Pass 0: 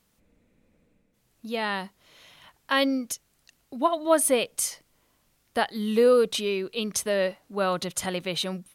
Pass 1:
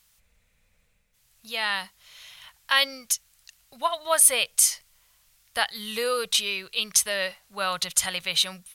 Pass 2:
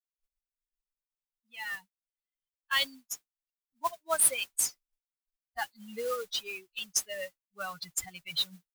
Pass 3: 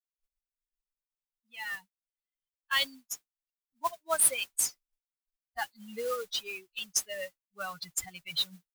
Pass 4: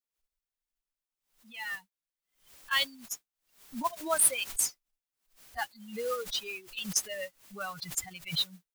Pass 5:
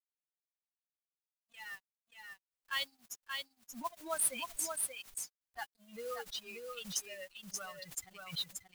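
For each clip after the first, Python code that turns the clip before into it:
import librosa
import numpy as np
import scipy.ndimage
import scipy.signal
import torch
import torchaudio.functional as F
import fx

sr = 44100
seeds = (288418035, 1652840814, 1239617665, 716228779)

y1 = fx.tone_stack(x, sr, knobs='10-0-10')
y1 = y1 * 10.0 ** (9.0 / 20.0)
y2 = fx.bin_expand(y1, sr, power=3.0)
y2 = fx.mod_noise(y2, sr, seeds[0], snr_db=14)
y2 = y2 * 10.0 ** (-3.5 / 20.0)
y3 = y2
y4 = fx.pre_swell(y3, sr, db_per_s=130.0)
y5 = np.sign(y4) * np.maximum(np.abs(y4) - 10.0 ** (-50.5 / 20.0), 0.0)
y5 = y5 + 10.0 ** (-4.5 / 20.0) * np.pad(y5, (int(581 * sr / 1000.0), 0))[:len(y5)]
y5 = y5 * 10.0 ** (-8.0 / 20.0)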